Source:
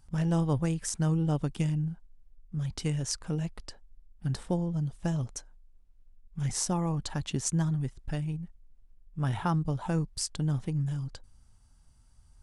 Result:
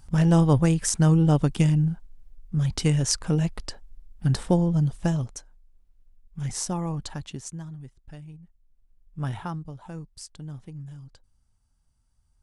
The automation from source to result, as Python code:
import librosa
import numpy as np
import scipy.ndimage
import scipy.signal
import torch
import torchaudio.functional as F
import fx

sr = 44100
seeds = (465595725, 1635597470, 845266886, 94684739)

y = fx.gain(x, sr, db=fx.line((4.96, 8.5), (5.37, 0.5), (7.05, 0.5), (7.61, -10.0), (8.41, -10.0), (9.24, 0.5), (9.71, -9.0)))